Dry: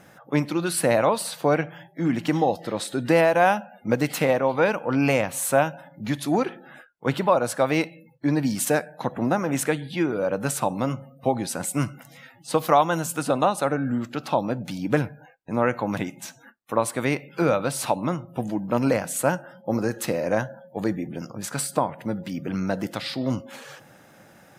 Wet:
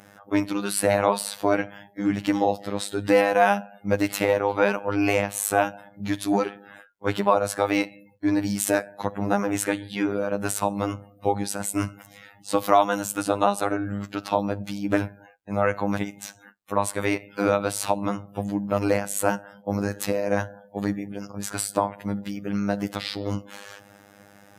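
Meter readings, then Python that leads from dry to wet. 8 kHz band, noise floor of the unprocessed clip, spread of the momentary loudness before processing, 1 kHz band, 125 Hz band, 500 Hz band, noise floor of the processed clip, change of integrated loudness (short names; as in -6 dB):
0.0 dB, -53 dBFS, 10 LU, 0.0 dB, -3.5 dB, -1.0 dB, -54 dBFS, -0.5 dB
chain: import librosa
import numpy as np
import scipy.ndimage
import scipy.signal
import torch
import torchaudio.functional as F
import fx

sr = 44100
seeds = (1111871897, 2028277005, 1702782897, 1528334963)

y = fx.robotise(x, sr, hz=101.0)
y = y * 10.0 ** (2.0 / 20.0)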